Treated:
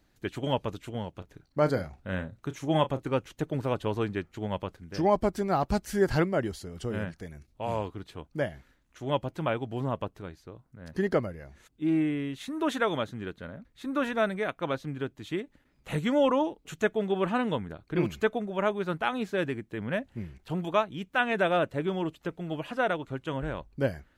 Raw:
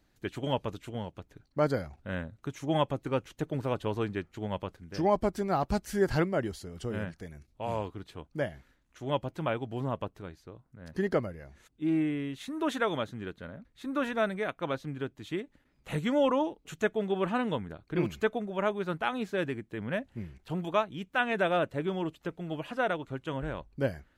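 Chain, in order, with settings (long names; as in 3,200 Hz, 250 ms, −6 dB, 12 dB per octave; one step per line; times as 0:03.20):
0:01.17–0:03.06: double-tracking delay 32 ms −12.5 dB
level +2 dB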